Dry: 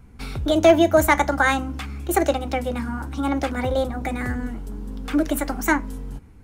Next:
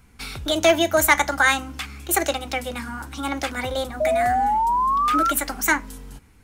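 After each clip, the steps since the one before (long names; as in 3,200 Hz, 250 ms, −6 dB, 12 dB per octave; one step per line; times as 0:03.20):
tilt shelving filter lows −7 dB, about 1,100 Hz
sound drawn into the spectrogram rise, 0:04.00–0:05.32, 610–1,400 Hz −20 dBFS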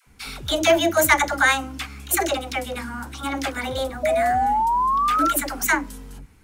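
all-pass dispersion lows, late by 72 ms, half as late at 520 Hz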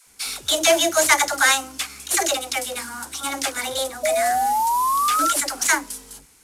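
variable-slope delta modulation 64 kbit/s
bass and treble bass −14 dB, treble +13 dB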